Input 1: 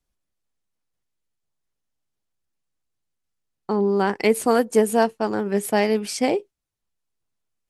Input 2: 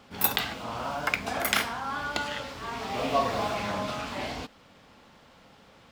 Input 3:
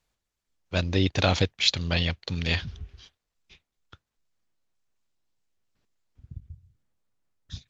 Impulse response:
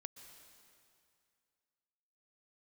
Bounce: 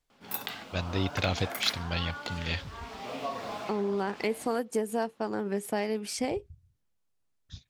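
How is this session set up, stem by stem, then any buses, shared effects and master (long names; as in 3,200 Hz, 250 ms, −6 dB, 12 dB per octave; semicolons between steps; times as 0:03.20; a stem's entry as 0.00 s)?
−3.0 dB, 0.00 s, bus A, no send, de-essing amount 50%
−8.0 dB, 0.10 s, bus A, no send, high-pass filter 130 Hz
−6.5 dB, 0.00 s, no bus, no send, no processing
bus A: 0.0 dB, downward compressor 2.5 to 1, threshold −30 dBFS, peak gain reduction 10.5 dB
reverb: not used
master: no processing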